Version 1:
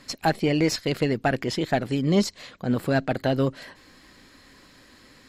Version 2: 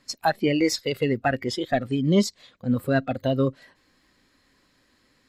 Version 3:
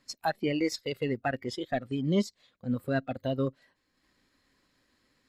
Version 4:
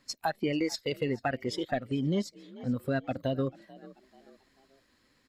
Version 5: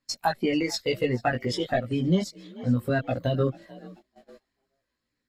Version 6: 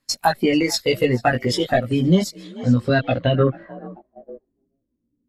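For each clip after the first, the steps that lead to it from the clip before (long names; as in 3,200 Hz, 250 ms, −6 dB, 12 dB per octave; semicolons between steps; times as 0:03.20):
noise reduction from a noise print of the clip's start 13 dB; level +1.5 dB
transient designer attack −1 dB, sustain −6 dB; level −6.5 dB
echo with shifted repeats 438 ms, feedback 41%, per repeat +45 Hz, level −23 dB; downward compressor, threshold −28 dBFS, peak gain reduction 7 dB; level +2.5 dB
multi-voice chorus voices 4, 0.84 Hz, delay 17 ms, depth 1 ms; noise gate −57 dBFS, range −20 dB; level +8.5 dB
low-pass filter sweep 12,000 Hz → 280 Hz, 0:02.34–0:04.66; level +7 dB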